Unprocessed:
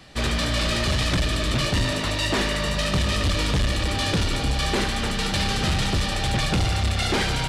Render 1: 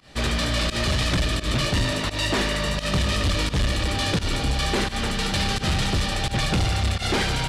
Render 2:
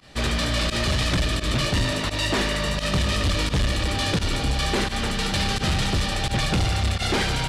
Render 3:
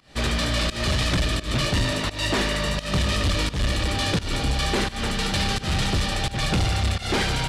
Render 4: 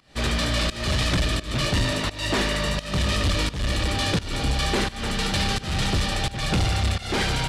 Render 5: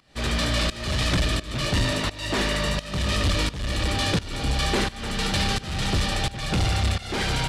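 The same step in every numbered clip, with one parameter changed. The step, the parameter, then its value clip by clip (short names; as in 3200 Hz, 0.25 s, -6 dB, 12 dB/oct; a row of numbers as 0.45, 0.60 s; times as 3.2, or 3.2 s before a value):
pump, release: 103, 65, 203, 312, 475 ms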